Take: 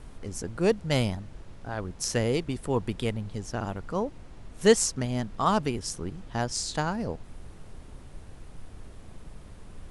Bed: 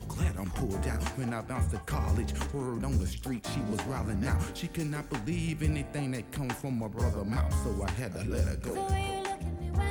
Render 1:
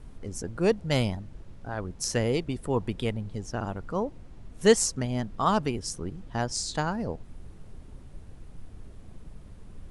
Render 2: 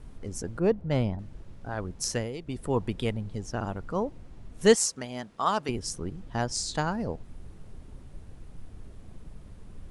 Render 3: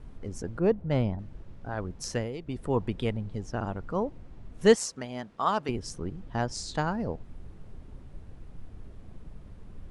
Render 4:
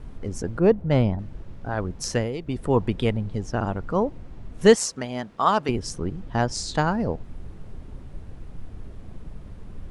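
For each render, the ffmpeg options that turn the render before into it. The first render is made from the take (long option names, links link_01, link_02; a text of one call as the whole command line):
ffmpeg -i in.wav -af "afftdn=noise_reduction=6:noise_floor=-47" out.wav
ffmpeg -i in.wav -filter_complex "[0:a]asettb=1/sr,asplit=3[link_01][link_02][link_03];[link_01]atrim=end=0.594[link_04];[link_02]atrim=start=0.59:end=1.19,asetpts=PTS-STARTPTS,afade=type=in:duration=0.004:curve=qsin,afade=type=out:start_time=0.596:duration=0.004:curve=qsin,lowpass=frequency=1000:poles=1[link_05];[link_03]atrim=start=1.186[link_06];[link_04][link_05]acrossfade=duration=0.004:curve1=hsin:curve2=qsin[link_07];[link_07][link_06]acrossfade=duration=0.004:curve1=qsin:curve2=hsin,asettb=1/sr,asplit=3[link_08][link_09][link_10];[link_08]atrim=end=4.754[link_11];[link_09]atrim=start=4.75:end=5.69,asetpts=PTS-STARTPTS,afade=type=in:duration=0.004:curve=qsin,afade=type=out:start_time=0.936:duration=0.004:curve=qsin,highpass=frequency=550:poles=1[link_12];[link_10]atrim=start=5.686[link_13];[link_11][link_12]acrossfade=duration=0.004:curve1=hsin:curve2=qsin[link_14];[link_14][link_13]acrossfade=duration=0.004:curve1=qsin:curve2=hsin,asplit=3[link_15][link_16][link_17];[link_15]atrim=end=2.31,asetpts=PTS-STARTPTS,afade=type=out:start_time=2.07:duration=0.24:silence=0.281838[link_18];[link_16]atrim=start=2.31:end=2.38,asetpts=PTS-STARTPTS,volume=-11dB[link_19];[link_17]atrim=start=2.38,asetpts=PTS-STARTPTS,afade=type=in:duration=0.24:silence=0.281838[link_20];[link_18][link_19][link_20]concat=n=3:v=0:a=1" out.wav
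ffmpeg -i in.wav -af "lowpass=frequency=3300:poles=1" out.wav
ffmpeg -i in.wav -af "volume=6.5dB,alimiter=limit=-3dB:level=0:latency=1" out.wav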